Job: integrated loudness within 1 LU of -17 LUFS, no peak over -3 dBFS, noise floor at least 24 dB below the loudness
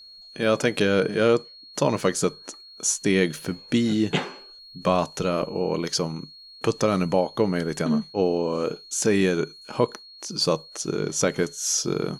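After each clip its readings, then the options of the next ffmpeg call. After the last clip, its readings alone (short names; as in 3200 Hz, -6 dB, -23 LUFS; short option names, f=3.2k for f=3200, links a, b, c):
steady tone 4300 Hz; tone level -44 dBFS; loudness -24.5 LUFS; peak -7.0 dBFS; loudness target -17.0 LUFS
-> -af "bandreject=f=4.3k:w=30"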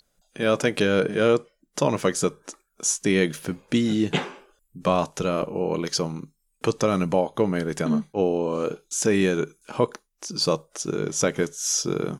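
steady tone none; loudness -24.5 LUFS; peak -7.0 dBFS; loudness target -17.0 LUFS
-> -af "volume=7.5dB,alimiter=limit=-3dB:level=0:latency=1"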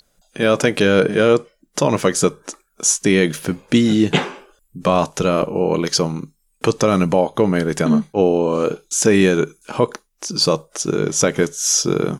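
loudness -17.5 LUFS; peak -3.0 dBFS; noise floor -65 dBFS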